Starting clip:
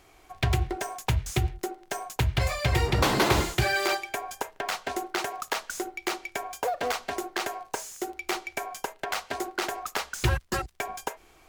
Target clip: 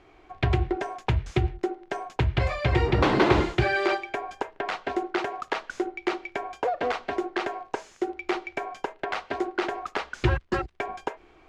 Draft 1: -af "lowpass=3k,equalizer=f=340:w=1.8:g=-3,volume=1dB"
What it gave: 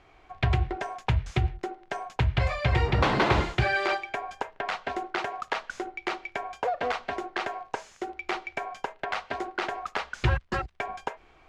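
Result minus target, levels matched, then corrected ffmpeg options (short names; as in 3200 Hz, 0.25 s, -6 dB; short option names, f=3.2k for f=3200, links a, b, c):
250 Hz band -4.5 dB
-af "lowpass=3k,equalizer=f=340:w=1.8:g=5.5,volume=1dB"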